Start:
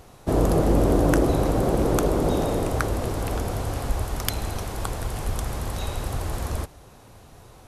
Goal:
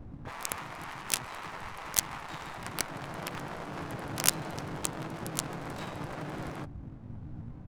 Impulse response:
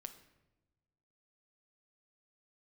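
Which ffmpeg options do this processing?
-filter_complex "[0:a]afftfilt=real='re*lt(hypot(re,im),0.112)':imag='im*lt(hypot(re,im),0.112)':win_size=1024:overlap=0.75,lowshelf=f=190:t=q:w=3:g=8,asplit=4[s0][s1][s2][s3];[s1]asetrate=35002,aresample=44100,atempo=1.25992,volume=0.398[s4];[s2]asetrate=55563,aresample=44100,atempo=0.793701,volume=0.398[s5];[s3]asetrate=88200,aresample=44100,atempo=0.5,volume=0.794[s6];[s0][s4][s5][s6]amix=inputs=4:normalize=0,crystalizer=i=6.5:c=0,adynamicsmooth=sensitivity=1:basefreq=630,volume=0.501"

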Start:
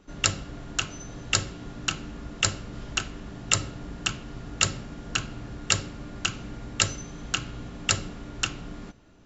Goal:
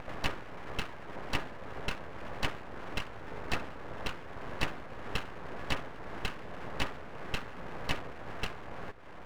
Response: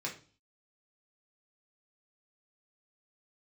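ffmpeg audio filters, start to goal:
-af "highpass=f=410:p=1,acompressor=mode=upward:threshold=0.02:ratio=2.5,lowpass=f=1600:w=0.5412,lowpass=f=1600:w=1.3066,aeval=exprs='abs(val(0))':c=same,volume=1.58"

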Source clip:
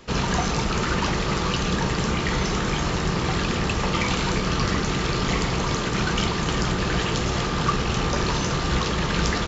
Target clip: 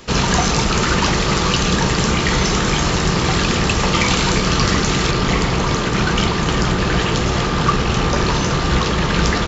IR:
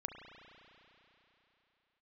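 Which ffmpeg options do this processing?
-af "asetnsamples=n=441:p=0,asendcmd='5.11 highshelf g -2.5',highshelf=f=4300:g=6,volume=2.11"

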